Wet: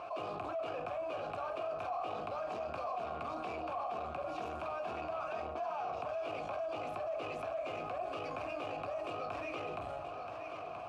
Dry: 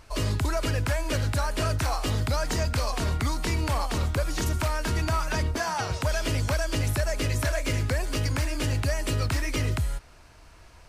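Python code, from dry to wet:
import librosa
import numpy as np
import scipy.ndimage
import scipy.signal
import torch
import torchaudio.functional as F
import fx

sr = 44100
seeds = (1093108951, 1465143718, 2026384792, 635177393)

p1 = scipy.signal.sosfilt(scipy.signal.butter(4, 69.0, 'highpass', fs=sr, output='sos'), x)
p2 = fx.room_shoebox(p1, sr, seeds[0], volume_m3=200.0, walls='furnished', distance_m=0.84)
p3 = 10.0 ** (-30.0 / 20.0) * np.tanh(p2 / 10.0 ** (-30.0 / 20.0))
p4 = fx.vowel_filter(p3, sr, vowel='a')
p5 = fx.high_shelf(p4, sr, hz=2700.0, db=-10.0)
p6 = p5 + fx.echo_single(p5, sr, ms=978, db=-16.0, dry=0)
p7 = fx.env_flatten(p6, sr, amount_pct=70)
y = p7 * 10.0 ** (1.0 / 20.0)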